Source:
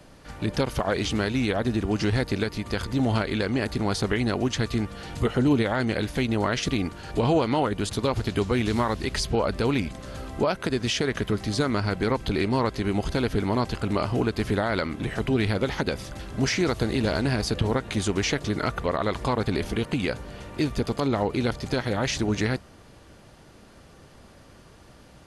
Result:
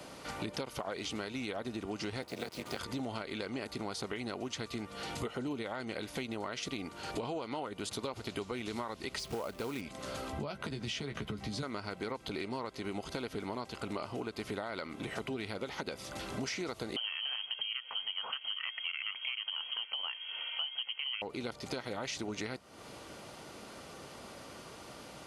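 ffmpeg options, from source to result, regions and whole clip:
-filter_complex "[0:a]asettb=1/sr,asplit=3[s0][s1][s2];[s0]atrim=end=2.224[s3];[s1]atrim=start=2.22:end=2.79,asetpts=PTS-STARTPTS,afade=t=in:d=0.004:c=qsin,afade=t=out:st=0.566:d=0.004:c=qsin,tremolo=f=260:d=0.919,afreqshift=24,acrusher=bits=6:mix=0:aa=0.5[s4];[s2]atrim=start=2.786[s5];[s3][s4]acrossfade=d=0.004:c1=hsin:c2=qsin[s6];[s6][s5]acrossfade=d=0.004:c1=qsin:c2=hsin,asettb=1/sr,asplit=3[s7][s8][s9];[s7]atrim=end=9.194[s10];[s8]atrim=start=9.19:end=9.81,asetpts=PTS-STARTPTS,afade=t=in:d=0.004:c=qsin,afade=t=out:st=0.616:d=0.004:c=qsin,highshelf=f=3800:g=-8,asoftclip=type=hard:threshold=0.126,acrusher=bits=4:mode=log:mix=0:aa=0.000001[s11];[s9]atrim=start=9.806[s12];[s10][s11]acrossfade=d=0.004:c1=hsin:c2=qsin[s13];[s13][s12]acrossfade=d=0.004:c1=qsin:c2=hsin,asettb=1/sr,asplit=3[s14][s15][s16];[s14]atrim=end=10.324[s17];[s15]atrim=start=10.32:end=11.63,asetpts=PTS-STARTPTS,afade=t=in:d=0.004:c=qsin,afade=t=out:st=1.306:d=0.004:c=qsin,bass=f=250:g=9,treble=f=4000:g=-7,acrossover=split=140|3000[s18][s19][s20];[s19]acompressor=threshold=0.0447:ratio=4:attack=3.2:release=140:knee=2.83:detection=peak[s21];[s18][s21][s20]amix=inputs=3:normalize=0,asplit=2[s22][s23];[s23]adelay=14,volume=0.473[s24];[s22][s24]amix=inputs=2:normalize=0,atrim=end_sample=57771[s25];[s16]atrim=start=11.626[s26];[s17][s25]acrossfade=d=0.004:c1=hsin:c2=qsin[s27];[s27][s26]acrossfade=d=0.004:c1=qsin:c2=hsin,asettb=1/sr,asplit=3[s28][s29][s30];[s28]atrim=end=16.964[s31];[s29]atrim=start=16.96:end=21.22,asetpts=PTS-STARTPTS,afade=t=in:d=0.004:c=qsin,afade=t=out:st=4.256:d=0.004:c=qsin,lowpass=f=2800:t=q:w=0.5098,lowpass=f=2800:t=q:w=0.6013,lowpass=f=2800:t=q:w=0.9,lowpass=f=2800:t=q:w=2.563,afreqshift=-3300,equalizer=f=310:t=o:w=0.37:g=-14.5[s32];[s30]atrim=start=21.216[s33];[s31][s32]acrossfade=d=0.004:c1=hsin:c2=qsin[s34];[s34][s33]acrossfade=d=0.004:c1=qsin:c2=hsin,highpass=f=370:p=1,bandreject=f=1700:w=7.8,acompressor=threshold=0.00708:ratio=5,volume=1.88"

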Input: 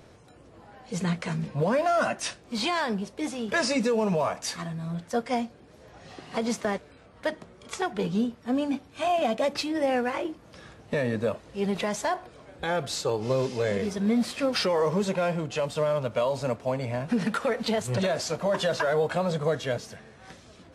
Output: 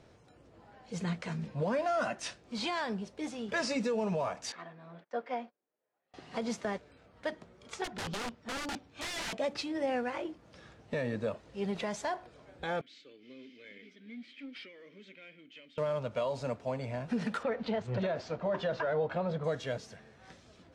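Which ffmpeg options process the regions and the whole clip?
-filter_complex "[0:a]asettb=1/sr,asplit=3[s0][s1][s2];[s0]atrim=end=4.524[s3];[s1]atrim=start=4.52:end=6.14,asetpts=PTS-STARTPTS,afade=t=in:d=0.004:c=qsin,afade=t=out:st=1.616:d=0.004:c=qsin,agate=range=0.0447:threshold=0.00708:ratio=16:release=100:detection=peak,highpass=370,lowpass=2500[s4];[s2]atrim=start=6.136[s5];[s3][s4]acrossfade=d=0.004:c1=hsin:c2=qsin[s6];[s6][s5]acrossfade=d=0.004:c1=qsin:c2=hsin,asettb=1/sr,asplit=3[s7][s8][s9];[s7]atrim=end=7.844[s10];[s8]atrim=start=7.84:end=9.33,asetpts=PTS-STARTPTS,afade=t=in:d=0.004:c=qsin,afade=t=out:st=1.486:d=0.004:c=qsin,lowpass=7500,aeval=exprs='(mod(18.8*val(0)+1,2)-1)/18.8':c=same[s11];[s9]atrim=start=9.326[s12];[s10][s11]acrossfade=d=0.004:c1=hsin:c2=qsin[s13];[s13][s12]acrossfade=d=0.004:c1=qsin:c2=hsin,asettb=1/sr,asplit=3[s14][s15][s16];[s14]atrim=end=12.814[s17];[s15]atrim=start=12.81:end=15.78,asetpts=PTS-STARTPTS,afade=t=in:d=0.004:c=qsin,afade=t=out:st=2.966:d=0.004:c=qsin,asplit=3[s18][s19][s20];[s18]bandpass=f=270:t=q:w=8,volume=1[s21];[s19]bandpass=f=2290:t=q:w=8,volume=0.501[s22];[s20]bandpass=f=3010:t=q:w=8,volume=0.355[s23];[s21][s22][s23]amix=inputs=3:normalize=0,lowshelf=f=470:g=-7.5,asplit=2[s24][s25];[s25]highpass=f=720:p=1,volume=3.55,asoftclip=type=tanh:threshold=0.0398[s26];[s24][s26]amix=inputs=2:normalize=0,lowpass=f=3400:p=1,volume=0.501[s27];[s16]atrim=start=15.776[s28];[s17][s27]acrossfade=d=0.004:c1=hsin:c2=qsin[s29];[s29][s28]acrossfade=d=0.004:c1=qsin:c2=hsin,asettb=1/sr,asplit=3[s30][s31][s32];[s30]atrim=end=17.434[s33];[s31]atrim=start=17.43:end=19.44,asetpts=PTS-STARTPTS,afade=t=in:d=0.004:c=qsin,afade=t=out:st=2.006:d=0.004:c=qsin,lowpass=5500,aemphasis=mode=reproduction:type=75fm[s34];[s32]atrim=start=19.436[s35];[s33][s34]acrossfade=d=0.004:c1=hsin:c2=qsin[s36];[s36][s35]acrossfade=d=0.004:c1=qsin:c2=hsin,lowpass=7700,bandreject=f=1100:w=25,volume=0.447"

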